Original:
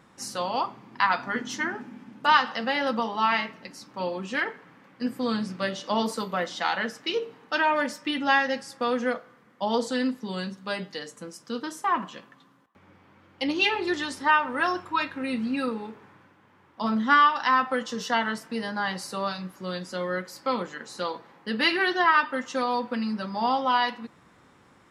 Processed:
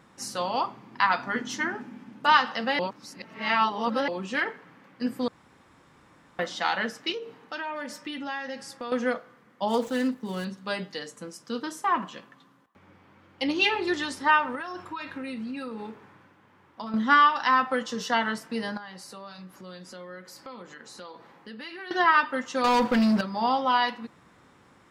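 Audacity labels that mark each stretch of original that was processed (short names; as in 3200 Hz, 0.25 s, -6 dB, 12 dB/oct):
2.790000	4.080000	reverse
5.280000	6.390000	room tone
7.120000	8.920000	compressor 2.5:1, threshold -35 dBFS
9.680000	10.450000	median filter over 9 samples
14.550000	16.940000	compressor 16:1, threshold -31 dBFS
18.770000	21.910000	compressor 3:1, threshold -43 dBFS
22.640000	23.210000	sample leveller passes 3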